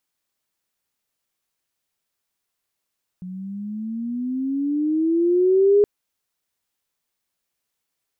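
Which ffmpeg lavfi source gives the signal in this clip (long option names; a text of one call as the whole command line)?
ffmpeg -f lavfi -i "aevalsrc='pow(10,(-11+19.5*(t/2.62-1))/20)*sin(2*PI*180*2.62/(14.5*log(2)/12)*(exp(14.5*log(2)/12*t/2.62)-1))':duration=2.62:sample_rate=44100" out.wav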